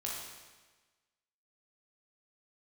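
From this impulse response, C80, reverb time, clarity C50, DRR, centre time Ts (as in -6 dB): 3.0 dB, 1.3 s, 0.0 dB, -4.0 dB, 77 ms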